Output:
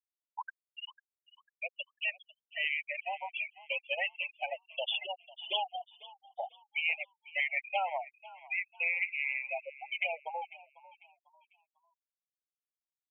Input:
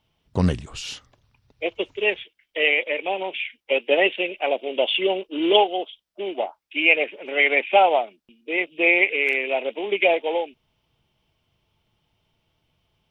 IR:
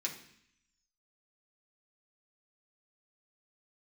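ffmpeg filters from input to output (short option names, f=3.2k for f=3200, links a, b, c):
-filter_complex "[0:a]highpass=f=760:w=0.5412,highpass=f=760:w=1.3066,afftfilt=real='re*gte(hypot(re,im),0.126)':imag='im*gte(hypot(re,im),0.126)':win_size=1024:overlap=0.75,acompressor=threshold=-36dB:ratio=2.5,asplit=2[a][b];[b]asplit=3[c][d][e];[c]adelay=497,afreqshift=52,volume=-19dB[f];[d]adelay=994,afreqshift=104,volume=-28.1dB[g];[e]adelay=1491,afreqshift=156,volume=-37.2dB[h];[f][g][h]amix=inputs=3:normalize=0[i];[a][i]amix=inputs=2:normalize=0"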